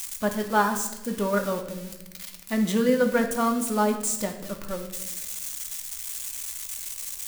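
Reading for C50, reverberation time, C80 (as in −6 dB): 8.5 dB, 1.0 s, 11.5 dB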